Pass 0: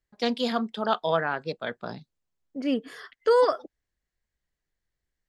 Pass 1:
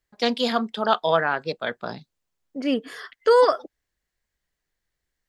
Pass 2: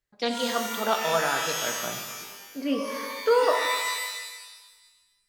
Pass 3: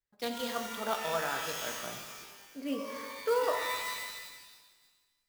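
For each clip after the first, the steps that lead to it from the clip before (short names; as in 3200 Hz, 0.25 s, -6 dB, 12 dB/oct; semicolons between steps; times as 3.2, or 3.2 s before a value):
low shelf 360 Hz -5 dB; gain +5.5 dB
shimmer reverb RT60 1.3 s, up +12 st, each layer -2 dB, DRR 3.5 dB; gain -5.5 dB
clock jitter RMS 0.022 ms; gain -8 dB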